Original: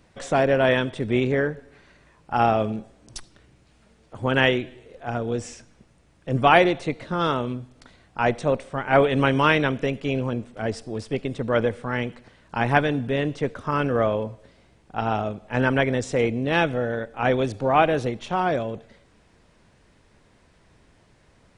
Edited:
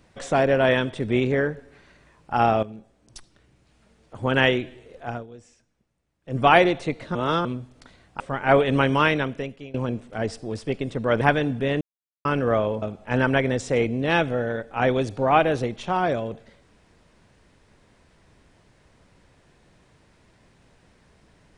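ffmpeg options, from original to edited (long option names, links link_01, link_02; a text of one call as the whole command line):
ffmpeg -i in.wav -filter_complex "[0:a]asplit=12[link_01][link_02][link_03][link_04][link_05][link_06][link_07][link_08][link_09][link_10][link_11][link_12];[link_01]atrim=end=2.63,asetpts=PTS-STARTPTS,afade=type=out:start_time=2.626:duration=0.004:curve=hsin:silence=0.237137[link_13];[link_02]atrim=start=2.63:end=5.27,asetpts=PTS-STARTPTS,afade=type=in:duration=1.68:silence=0.237137,afade=type=out:start_time=2.42:duration=0.22:silence=0.133352[link_14];[link_03]atrim=start=5.27:end=6.22,asetpts=PTS-STARTPTS,volume=-17.5dB[link_15];[link_04]atrim=start=6.22:end=7.152,asetpts=PTS-STARTPTS,afade=type=in:duration=0.22:silence=0.133352[link_16];[link_05]atrim=start=7.148:end=7.452,asetpts=PTS-STARTPTS,areverse[link_17];[link_06]atrim=start=7.448:end=8.202[link_18];[link_07]atrim=start=8.638:end=10.18,asetpts=PTS-STARTPTS,afade=type=out:start_time=0.512:duration=1.03:curve=qsin:silence=0.0749894[link_19];[link_08]atrim=start=10.18:end=11.652,asetpts=PTS-STARTPTS,afade=type=in:duration=0.004:curve=hsin:silence=0.0749894[link_20];[link_09]atrim=start=12.688:end=13.29,asetpts=PTS-STARTPTS,afade=type=out:start_time=0.598:duration=0.004:curve=hsin[link_21];[link_10]atrim=start=13.29:end=13.73,asetpts=PTS-STARTPTS,volume=0[link_22];[link_11]atrim=start=13.73:end=14.302,asetpts=PTS-STARTPTS,afade=type=in:duration=0.004:curve=hsin[link_23];[link_12]atrim=start=15.248[link_24];[link_13][link_14][link_15][link_16]concat=n=4:v=0:a=1[link_25];[link_25][link_17]acrossfade=duration=0.004:curve1=hsin:curve2=hsin[link_26];[link_26][link_18]acrossfade=duration=0.004:curve1=hsin:curve2=hsin[link_27];[link_19][link_20]concat=n=2:v=0:a=1[link_28];[link_27][link_28]acrossfade=duration=0.004:curve1=hsin:curve2=hsin[link_29];[link_21][link_22][link_23]concat=n=3:v=0:a=1[link_30];[link_29][link_30]acrossfade=duration=0.004:curve1=hsin:curve2=hsin[link_31];[link_31][link_24]acrossfade=duration=0.004:curve1=hsin:curve2=hsin" out.wav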